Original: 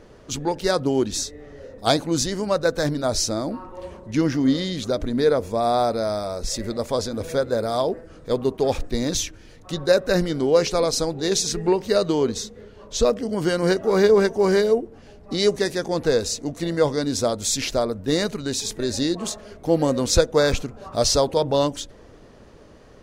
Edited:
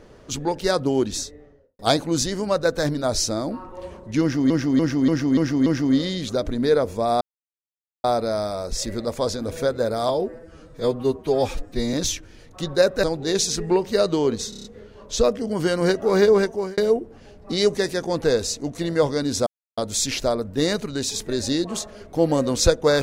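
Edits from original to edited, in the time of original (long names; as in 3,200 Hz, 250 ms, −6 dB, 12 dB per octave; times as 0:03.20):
0:01.07–0:01.79: fade out and dull
0:04.21–0:04.50: repeat, 6 plays
0:05.76: splice in silence 0.83 s
0:07.81–0:09.04: time-stretch 1.5×
0:10.14–0:11.00: remove
0:12.46: stutter 0.03 s, 6 plays
0:14.05–0:14.59: fade out equal-power
0:17.28: splice in silence 0.31 s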